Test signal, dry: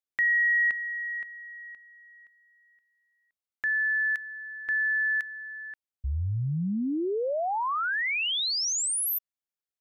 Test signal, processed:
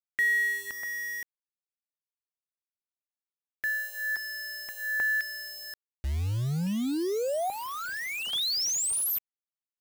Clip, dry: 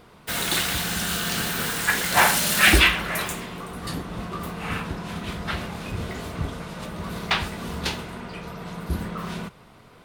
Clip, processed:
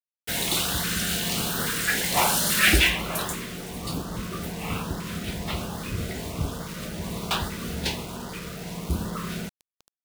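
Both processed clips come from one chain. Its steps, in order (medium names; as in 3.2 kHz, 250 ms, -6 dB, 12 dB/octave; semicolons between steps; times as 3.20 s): in parallel at -8.5 dB: integer overflow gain 15.5 dB; on the sum: word length cut 6-bit, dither none; LFO notch saw up 1.2 Hz 680–2600 Hz; trim -2.5 dB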